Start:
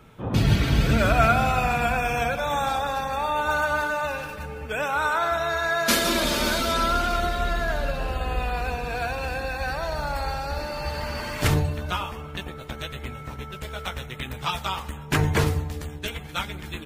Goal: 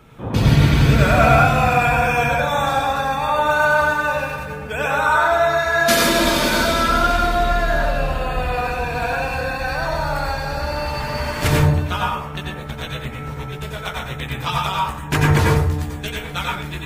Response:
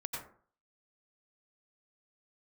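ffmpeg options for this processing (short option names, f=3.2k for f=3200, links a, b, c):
-filter_complex "[1:a]atrim=start_sample=2205[a];[0:a][a]afir=irnorm=-1:irlink=0,volume=5.5dB"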